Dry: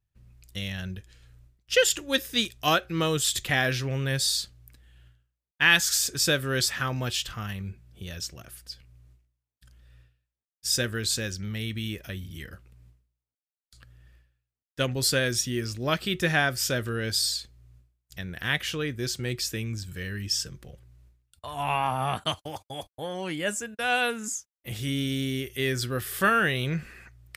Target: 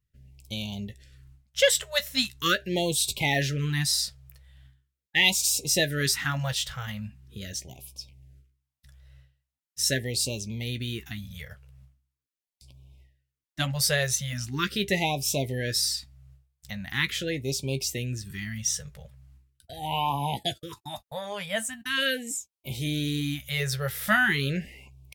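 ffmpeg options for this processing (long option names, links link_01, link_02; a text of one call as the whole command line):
ffmpeg -i in.wav -filter_complex "[0:a]asplit=2[link_01][link_02];[link_02]adelay=16,volume=-11.5dB[link_03];[link_01][link_03]amix=inputs=2:normalize=0,asetrate=48000,aresample=44100,afftfilt=real='re*(1-between(b*sr/1024,280*pow(1600/280,0.5+0.5*sin(2*PI*0.41*pts/sr))/1.41,280*pow(1600/280,0.5+0.5*sin(2*PI*0.41*pts/sr))*1.41))':imag='im*(1-between(b*sr/1024,280*pow(1600/280,0.5+0.5*sin(2*PI*0.41*pts/sr))/1.41,280*pow(1600/280,0.5+0.5*sin(2*PI*0.41*pts/sr))*1.41))':win_size=1024:overlap=0.75" out.wav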